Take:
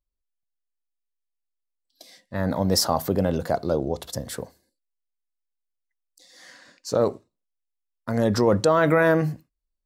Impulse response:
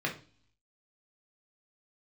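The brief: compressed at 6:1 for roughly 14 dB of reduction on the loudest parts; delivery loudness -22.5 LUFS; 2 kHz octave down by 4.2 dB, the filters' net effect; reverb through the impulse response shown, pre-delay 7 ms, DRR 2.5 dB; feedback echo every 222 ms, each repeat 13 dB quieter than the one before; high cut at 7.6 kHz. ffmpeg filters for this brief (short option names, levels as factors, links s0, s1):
-filter_complex "[0:a]lowpass=7600,equalizer=f=2000:t=o:g=-6,acompressor=threshold=0.0282:ratio=6,aecho=1:1:222|444|666:0.224|0.0493|0.0108,asplit=2[s0][s1];[1:a]atrim=start_sample=2205,adelay=7[s2];[s1][s2]afir=irnorm=-1:irlink=0,volume=0.335[s3];[s0][s3]amix=inputs=2:normalize=0,volume=3.76"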